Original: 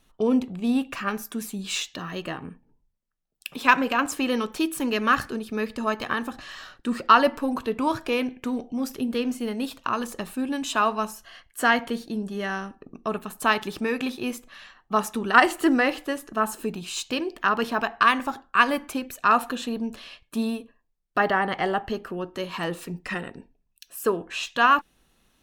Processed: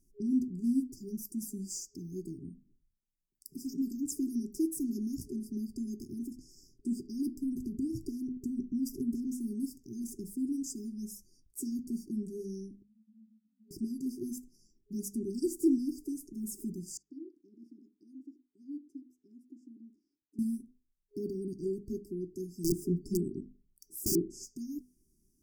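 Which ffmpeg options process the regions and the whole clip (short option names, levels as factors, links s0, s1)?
-filter_complex "[0:a]asettb=1/sr,asplit=3[s0][s1][s2];[s0]atrim=end=7.434[s3];[s1]atrim=start=7.43:end=9.27,asetpts=PTS-STARTPTS,afade=t=in:d=0.004:c=qsin,afade=t=out:st=1.836:d=0.004:c=qsin,lowshelf=f=330:g=6.5,acompressor=threshold=0.0794:ratio=16:attack=3.2:release=140:knee=1:detection=peak,asoftclip=type=hard:threshold=0.1[s4];[s2]atrim=start=9.266[s5];[s3][s4]acrossfade=d=0.004:c1=hsin:c2=qsin[s6];[s6][s5]acrossfade=d=0.004:c1=qsin:c2=hsin,asettb=1/sr,asplit=3[s7][s8][s9];[s7]atrim=end=12.824[s10];[s8]atrim=start=12.82:end=13.71,asetpts=PTS-STARTPTS,afade=t=in:d=0.004:c=qsin,afade=t=out:st=0.886:d=0.004:c=qsin,asuperpass=centerf=160:order=8:qfactor=6.5,afreqshift=49[s11];[s9]atrim=start=13.706[s12];[s10][s11]acrossfade=d=0.004:c1=hsin:c2=qsin[s13];[s13][s12]acrossfade=d=0.004:c1=qsin:c2=hsin,asettb=1/sr,asplit=3[s14][s15][s16];[s14]atrim=end=16.974[s17];[s15]atrim=start=16.97:end=20.39,asetpts=PTS-STARTPTS,afade=t=in:d=0.004:c=qsin,afade=t=out:st=3.416:d=0.004:c=qsin,asplit=3[s18][s19][s20];[s18]bandpass=f=300:t=q:w=8,volume=1[s21];[s19]bandpass=f=870:t=q:w=8,volume=0.501[s22];[s20]bandpass=f=2240:t=q:w=8,volume=0.355[s23];[s21][s22][s23]amix=inputs=3:normalize=0,lowshelf=f=390:g=-7.5[s24];[s16]atrim=start=20.386[s25];[s17][s24]acrossfade=d=0.004:c1=hsin:c2=qsin[s26];[s26][s25]acrossfade=d=0.004:c1=qsin:c2=hsin,asettb=1/sr,asplit=3[s27][s28][s29];[s27]atrim=end=22.644[s30];[s28]atrim=start=22.64:end=24.45,asetpts=PTS-STARTPTS,afade=t=in:d=0.004:c=qsin,afade=t=out:st=1.806:d=0.004:c=qsin,lowshelf=f=490:t=q:w=3:g=7,aeval=exprs='(mod(4.73*val(0)+1,2)-1)/4.73':c=same[s31];[s29]atrim=start=24.446[s32];[s30][s31]acrossfade=d=0.004:c1=hsin:c2=qsin[s33];[s33][s32]acrossfade=d=0.004:c1=qsin:c2=hsin,equalizer=f=4300:t=o:w=0.54:g=-7,bandreject=f=50:t=h:w=6,bandreject=f=100:t=h:w=6,bandreject=f=150:t=h:w=6,bandreject=f=200:t=h:w=6,bandreject=f=250:t=h:w=6,afftfilt=real='re*(1-between(b*sr/4096,410,4600))':imag='im*(1-between(b*sr/4096,410,4600))':win_size=4096:overlap=0.75,volume=0.562"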